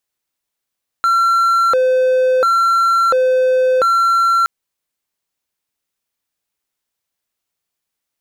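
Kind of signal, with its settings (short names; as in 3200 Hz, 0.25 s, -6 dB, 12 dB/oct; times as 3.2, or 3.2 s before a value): siren hi-lo 513–1360 Hz 0.72/s triangle -8.5 dBFS 3.42 s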